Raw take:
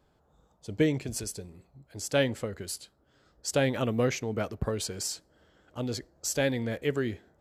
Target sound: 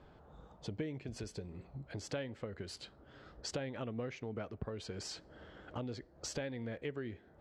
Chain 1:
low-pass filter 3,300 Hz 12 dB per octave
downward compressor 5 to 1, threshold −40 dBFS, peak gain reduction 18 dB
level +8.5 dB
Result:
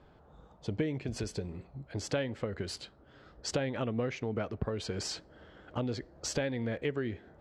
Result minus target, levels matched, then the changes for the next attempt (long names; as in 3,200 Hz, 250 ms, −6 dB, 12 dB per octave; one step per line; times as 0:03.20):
downward compressor: peak gain reduction −7.5 dB
change: downward compressor 5 to 1, threshold −49.5 dBFS, peak gain reduction 25.5 dB